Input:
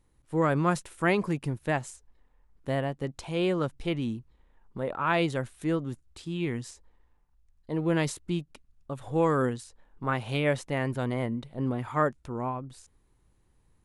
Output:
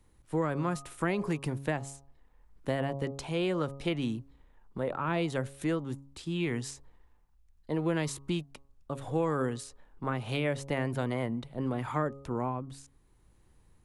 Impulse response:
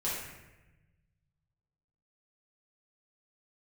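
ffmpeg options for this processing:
-filter_complex "[0:a]tremolo=f=0.74:d=0.33,bandreject=f=137.9:t=h:w=4,bandreject=f=275.8:t=h:w=4,bandreject=f=413.7:t=h:w=4,bandreject=f=551.6:t=h:w=4,bandreject=f=689.5:t=h:w=4,bandreject=f=827.4:t=h:w=4,bandreject=f=965.3:t=h:w=4,bandreject=f=1.1032k:t=h:w=4,bandreject=f=1.2411k:t=h:w=4,acrossover=split=100|480[a][b][c];[a]acompressor=threshold=-52dB:ratio=4[d];[b]acompressor=threshold=-35dB:ratio=4[e];[c]acompressor=threshold=-37dB:ratio=4[f];[d][e][f]amix=inputs=3:normalize=0,volume=4dB"

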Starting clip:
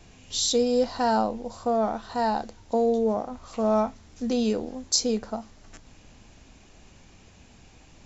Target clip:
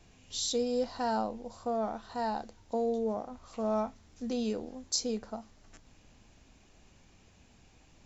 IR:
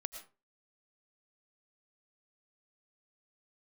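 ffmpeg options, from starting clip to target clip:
-af "volume=-8dB"

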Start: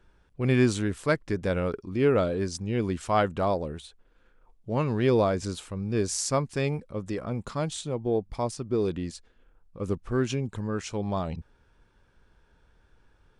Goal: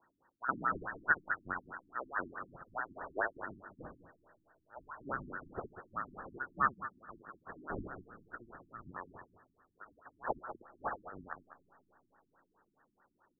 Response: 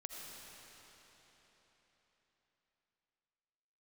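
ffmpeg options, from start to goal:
-filter_complex "[0:a]lowpass=f=3.1k:t=q:w=0.5098,lowpass=f=3.1k:t=q:w=0.6013,lowpass=f=3.1k:t=q:w=0.9,lowpass=f=3.1k:t=q:w=2.563,afreqshift=-3700,aecho=1:1:64|192|203:0.501|0.188|0.211,asplit=2[a][b];[1:a]atrim=start_sample=2205[c];[b][c]afir=irnorm=-1:irlink=0,volume=-13dB[d];[a][d]amix=inputs=2:normalize=0,afftfilt=real='re*lt(b*sr/1024,330*pow(1900/330,0.5+0.5*sin(2*PI*4.7*pts/sr)))':imag='im*lt(b*sr/1024,330*pow(1900/330,0.5+0.5*sin(2*PI*4.7*pts/sr)))':win_size=1024:overlap=0.75,volume=9.5dB"

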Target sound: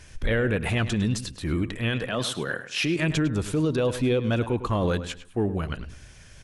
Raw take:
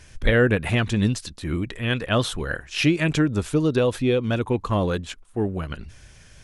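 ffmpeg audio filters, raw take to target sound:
-filter_complex "[0:a]asettb=1/sr,asplit=3[a][b][c];[a]atrim=end=2.074[d];[b]atrim=start=2.07:end=2.99,asetpts=PTS-STARTPTS,afade=t=in:d=0.004:c=qsin,afade=t=out:st=0.916:d=0.004:c=qsin,highpass=f=130:w=0.5412,highpass=f=130:w=1.3066[e];[c]atrim=start=2.986[f];[d][e]acrossfade=d=0.004:c1=hsin:c2=qsin[g];[g][f]acrossfade=d=0.004:c1=qsin:c2=hsin,alimiter=limit=-16.5dB:level=0:latency=1:release=13,asplit=2[h][i];[i]adelay=104,lowpass=f=4.6k:p=1,volume=-12.5dB,asplit=2[j][k];[k]adelay=104,lowpass=f=4.6k:p=1,volume=0.3,asplit=2[l][m];[m]adelay=104,lowpass=f=4.6k:p=1,volume=0.3[n];[h][j][l][n]amix=inputs=4:normalize=0"

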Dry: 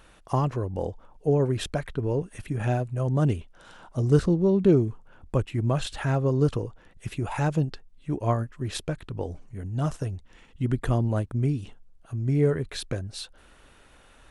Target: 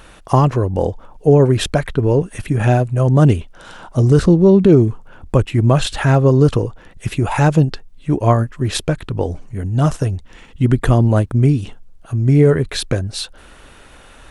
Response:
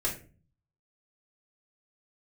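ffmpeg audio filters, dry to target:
-af "alimiter=level_in=13dB:limit=-1dB:release=50:level=0:latency=1,volume=-1dB"

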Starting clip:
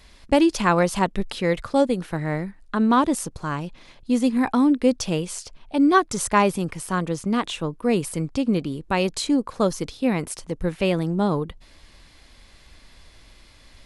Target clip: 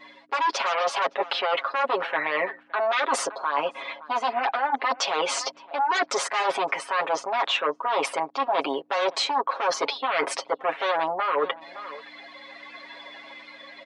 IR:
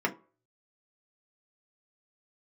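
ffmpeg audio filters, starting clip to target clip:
-filter_complex "[0:a]aeval=exprs='0.596*sin(PI/2*5.62*val(0)/0.596)':c=same,lowpass=4.4k,afftdn=nr=17:nf=-32,asplit=2[a][b];[b]adelay=565.6,volume=-26dB,highshelf=f=4k:g=-12.7[c];[a][c]amix=inputs=2:normalize=0,dynaudnorm=f=290:g=9:m=8dB,highshelf=f=2.5k:g=-10,aeval=exprs='val(0)+0.0708*(sin(2*PI*60*n/s)+sin(2*PI*2*60*n/s)/2+sin(2*PI*3*60*n/s)/3+sin(2*PI*4*60*n/s)/4+sin(2*PI*5*60*n/s)/5)':c=same,highpass=f=590:w=0.5412,highpass=f=590:w=1.3066,alimiter=limit=-8dB:level=0:latency=1:release=21,aecho=1:1:7.3:0.85,areverse,acompressor=threshold=-22dB:ratio=6,areverse"

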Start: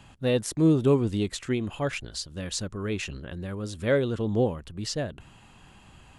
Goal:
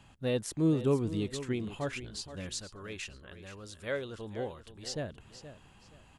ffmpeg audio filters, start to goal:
-filter_complex "[0:a]asettb=1/sr,asplit=3[a][b][c];[a]atrim=end=2.514[d];[b]atrim=start=2.51:end=4.86,asetpts=PTS-STARTPTS,afade=t=in:d=0.004:c=qsin,afade=t=out:st=2.346:d=0.004:c=qsin,equalizer=f=170:w=0.42:g=-11[e];[c]atrim=start=4.856[f];[d][e]acrossfade=d=0.004:c1=hsin:c2=qsin[g];[g][f]acrossfade=d=0.004:c1=qsin:c2=hsin,aecho=1:1:474|948|1422:0.224|0.0582|0.0151,volume=-6.5dB"

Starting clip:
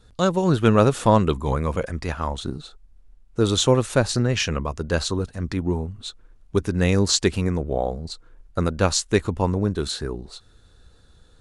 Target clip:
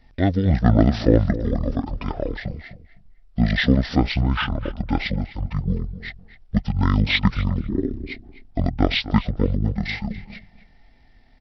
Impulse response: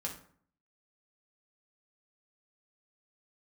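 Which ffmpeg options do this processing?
-filter_complex "[0:a]asetrate=22696,aresample=44100,atempo=1.94306,asplit=2[a][b];[b]adelay=254,lowpass=f=2.5k:p=1,volume=-14dB,asplit=2[c][d];[d]adelay=254,lowpass=f=2.5k:p=1,volume=0.21[e];[a][c][e]amix=inputs=3:normalize=0,volume=1dB"

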